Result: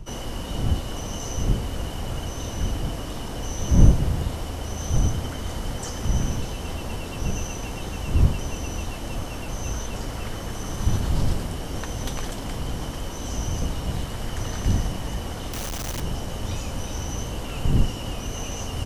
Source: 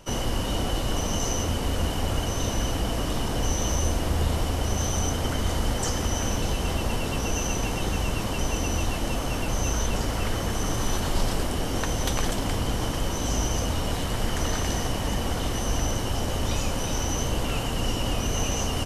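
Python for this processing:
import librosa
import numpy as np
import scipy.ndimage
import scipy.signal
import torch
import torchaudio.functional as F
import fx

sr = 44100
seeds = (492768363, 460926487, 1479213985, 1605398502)

y = fx.clip_1bit(x, sr, at=(15.53, 16.0))
y = fx.dmg_wind(y, sr, seeds[0], corner_hz=100.0, level_db=-21.0)
y = F.gain(torch.from_numpy(y), -5.0).numpy()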